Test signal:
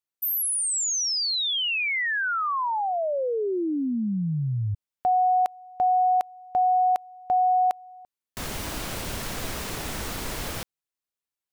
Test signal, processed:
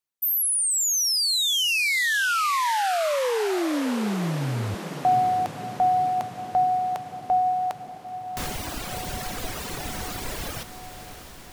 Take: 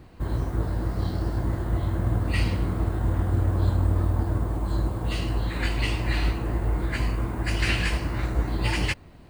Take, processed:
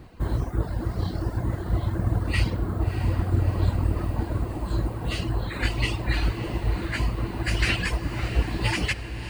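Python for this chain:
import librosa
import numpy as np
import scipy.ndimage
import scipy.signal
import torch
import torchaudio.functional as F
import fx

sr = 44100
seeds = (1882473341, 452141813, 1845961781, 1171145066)

y = fx.dereverb_blind(x, sr, rt60_s=1.7)
y = fx.echo_diffused(y, sr, ms=649, feedback_pct=68, wet_db=-11.0)
y = F.gain(torch.from_numpy(y), 2.5).numpy()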